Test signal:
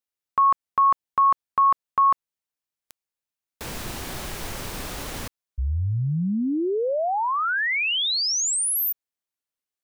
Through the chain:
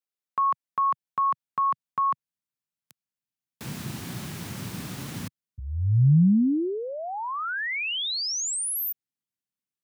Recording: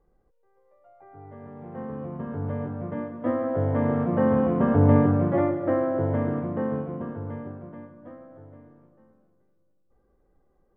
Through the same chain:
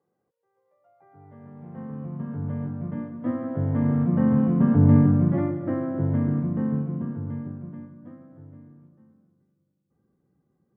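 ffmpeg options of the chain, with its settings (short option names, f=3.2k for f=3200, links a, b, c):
-af "highpass=f=130:w=0.5412,highpass=f=130:w=1.3066,asubboost=boost=9:cutoff=180,volume=-5dB"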